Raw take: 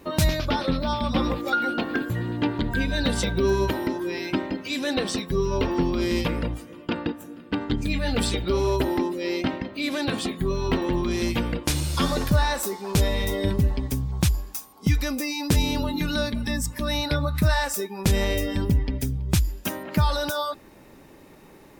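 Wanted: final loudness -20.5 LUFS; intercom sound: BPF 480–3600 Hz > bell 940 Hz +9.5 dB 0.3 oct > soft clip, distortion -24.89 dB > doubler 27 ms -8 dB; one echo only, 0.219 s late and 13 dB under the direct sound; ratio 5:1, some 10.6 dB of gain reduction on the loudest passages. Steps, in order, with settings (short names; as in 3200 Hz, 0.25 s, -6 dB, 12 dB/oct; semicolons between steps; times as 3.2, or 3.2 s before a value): compressor 5:1, threshold -28 dBFS; BPF 480–3600 Hz; bell 940 Hz +9.5 dB 0.3 oct; echo 0.219 s -13 dB; soft clip -20 dBFS; doubler 27 ms -8 dB; gain +15 dB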